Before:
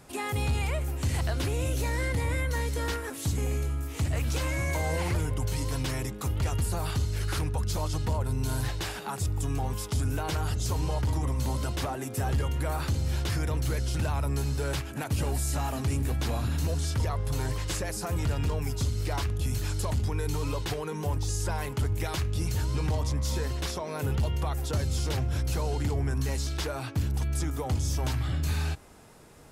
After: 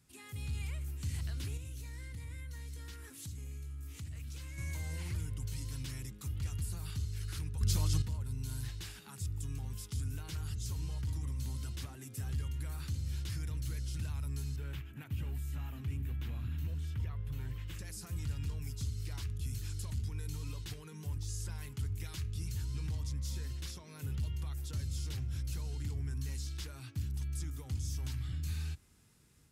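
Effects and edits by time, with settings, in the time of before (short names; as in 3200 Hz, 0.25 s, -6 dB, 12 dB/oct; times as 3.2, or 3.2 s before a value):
1.57–4.58 compressor, threshold -31 dBFS
7.61–8.02 gain +9.5 dB
14.56–17.79 band shelf 6800 Hz -14 dB
whole clip: HPF 51 Hz; passive tone stack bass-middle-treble 6-0-2; AGC gain up to 4 dB; gain +1 dB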